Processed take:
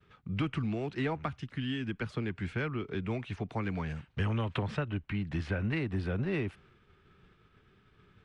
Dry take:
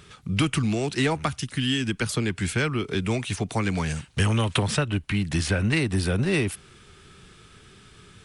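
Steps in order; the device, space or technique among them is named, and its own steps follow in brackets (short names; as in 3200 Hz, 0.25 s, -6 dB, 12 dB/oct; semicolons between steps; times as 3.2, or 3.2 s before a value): hearing-loss simulation (LPF 2300 Hz 12 dB/oct; expander -47 dBFS); gain -8.5 dB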